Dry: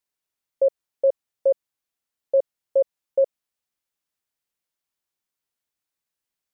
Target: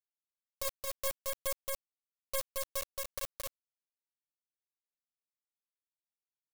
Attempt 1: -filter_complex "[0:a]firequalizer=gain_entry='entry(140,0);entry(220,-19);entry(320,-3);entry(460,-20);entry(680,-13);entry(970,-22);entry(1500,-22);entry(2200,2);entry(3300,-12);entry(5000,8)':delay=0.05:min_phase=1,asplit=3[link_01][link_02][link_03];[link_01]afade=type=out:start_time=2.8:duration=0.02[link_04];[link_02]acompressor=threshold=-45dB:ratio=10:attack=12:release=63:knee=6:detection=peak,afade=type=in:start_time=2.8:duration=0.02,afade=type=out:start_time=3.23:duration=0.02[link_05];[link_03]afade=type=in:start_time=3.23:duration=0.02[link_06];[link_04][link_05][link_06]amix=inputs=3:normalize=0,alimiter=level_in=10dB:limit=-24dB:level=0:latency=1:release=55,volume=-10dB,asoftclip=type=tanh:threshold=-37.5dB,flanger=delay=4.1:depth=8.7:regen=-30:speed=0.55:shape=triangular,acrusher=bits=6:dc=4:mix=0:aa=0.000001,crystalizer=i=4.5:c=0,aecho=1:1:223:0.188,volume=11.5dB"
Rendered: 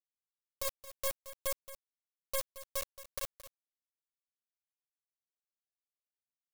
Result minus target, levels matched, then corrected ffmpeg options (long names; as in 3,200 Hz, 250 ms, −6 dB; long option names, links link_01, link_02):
echo-to-direct −12 dB
-filter_complex "[0:a]firequalizer=gain_entry='entry(140,0);entry(220,-19);entry(320,-3);entry(460,-20);entry(680,-13);entry(970,-22);entry(1500,-22);entry(2200,2);entry(3300,-12);entry(5000,8)':delay=0.05:min_phase=1,asplit=3[link_01][link_02][link_03];[link_01]afade=type=out:start_time=2.8:duration=0.02[link_04];[link_02]acompressor=threshold=-45dB:ratio=10:attack=12:release=63:knee=6:detection=peak,afade=type=in:start_time=2.8:duration=0.02,afade=type=out:start_time=3.23:duration=0.02[link_05];[link_03]afade=type=in:start_time=3.23:duration=0.02[link_06];[link_04][link_05][link_06]amix=inputs=3:normalize=0,alimiter=level_in=10dB:limit=-24dB:level=0:latency=1:release=55,volume=-10dB,asoftclip=type=tanh:threshold=-37.5dB,flanger=delay=4.1:depth=8.7:regen=-30:speed=0.55:shape=triangular,acrusher=bits=6:dc=4:mix=0:aa=0.000001,crystalizer=i=4.5:c=0,aecho=1:1:223:0.75,volume=11.5dB"